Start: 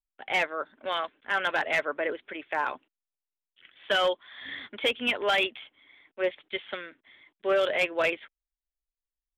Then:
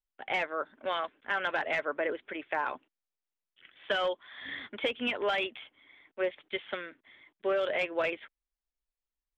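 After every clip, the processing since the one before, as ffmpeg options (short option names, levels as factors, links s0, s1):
-af "acompressor=threshold=0.0501:ratio=6,aemphasis=mode=reproduction:type=50fm"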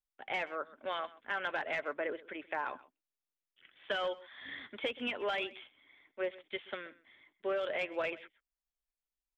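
-af "aecho=1:1:128:0.106,volume=0.562"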